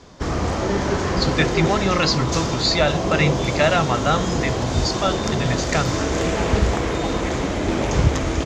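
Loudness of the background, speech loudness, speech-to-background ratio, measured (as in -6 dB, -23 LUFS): -22.5 LUFS, -22.0 LUFS, 0.5 dB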